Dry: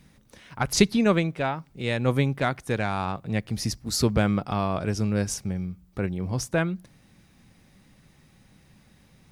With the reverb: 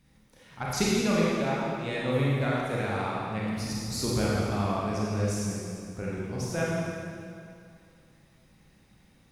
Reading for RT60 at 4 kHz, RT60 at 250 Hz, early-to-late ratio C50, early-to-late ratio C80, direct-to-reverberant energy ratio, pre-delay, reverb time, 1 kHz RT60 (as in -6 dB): 2.0 s, 2.3 s, -4.0 dB, -1.5 dB, -6.5 dB, 28 ms, 2.4 s, 2.4 s